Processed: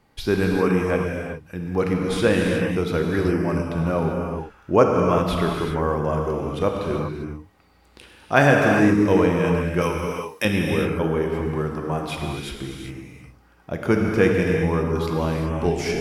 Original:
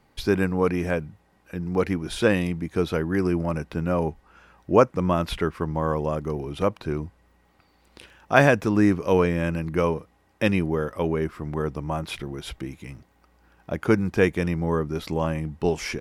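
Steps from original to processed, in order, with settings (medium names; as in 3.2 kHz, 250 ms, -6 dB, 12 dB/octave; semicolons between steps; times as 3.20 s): 9.81–10.45 s: tilt EQ +4 dB/octave; gated-style reverb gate 420 ms flat, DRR 0 dB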